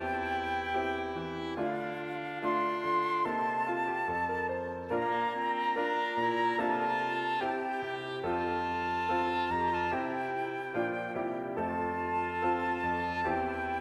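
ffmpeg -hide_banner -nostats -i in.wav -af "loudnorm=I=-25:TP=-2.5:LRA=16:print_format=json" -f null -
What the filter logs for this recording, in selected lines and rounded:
"input_i" : "-32.2",
"input_tp" : "-17.8",
"input_lra" : "1.9",
"input_thresh" : "-42.2",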